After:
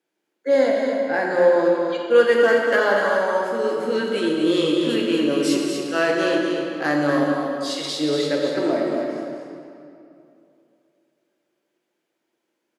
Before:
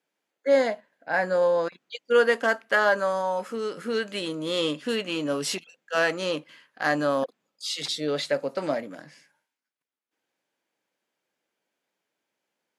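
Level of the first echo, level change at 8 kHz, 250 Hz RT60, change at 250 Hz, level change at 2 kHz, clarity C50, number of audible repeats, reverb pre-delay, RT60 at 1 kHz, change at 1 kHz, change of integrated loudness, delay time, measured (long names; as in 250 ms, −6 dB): −6.5 dB, +2.5 dB, 2.9 s, +11.0 dB, +3.0 dB, −0.5 dB, 1, 8 ms, 2.6 s, +3.5 dB, +6.0 dB, 237 ms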